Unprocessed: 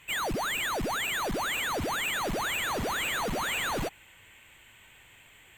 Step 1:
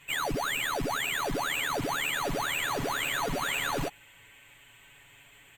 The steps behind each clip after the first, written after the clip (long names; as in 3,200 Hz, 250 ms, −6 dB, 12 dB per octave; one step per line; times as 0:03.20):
comb filter 7.1 ms, depth 76%
level −2 dB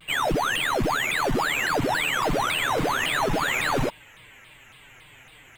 high-shelf EQ 3,700 Hz −6.5 dB
pitch modulation by a square or saw wave saw down 3.6 Hz, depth 250 cents
level +7.5 dB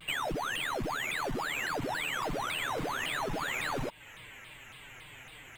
downward compressor 6 to 1, threshold −32 dBFS, peak gain reduction 11 dB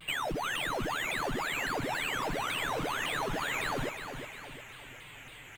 repeating echo 358 ms, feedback 47%, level −8.5 dB